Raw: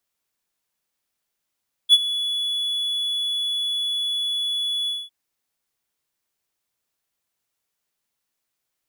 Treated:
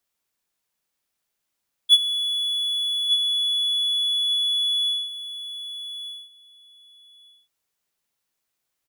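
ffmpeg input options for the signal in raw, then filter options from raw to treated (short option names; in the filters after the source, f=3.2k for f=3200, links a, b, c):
-f lavfi -i "aevalsrc='0.562*(1-4*abs(mod(3410*t+0.25,1)-0.5))':d=3.204:s=44100,afade=t=in:d=0.043,afade=t=out:st=0.043:d=0.04:silence=0.178,afade=t=out:st=2.99:d=0.214"
-af "aecho=1:1:1195|2390:0.282|0.0451"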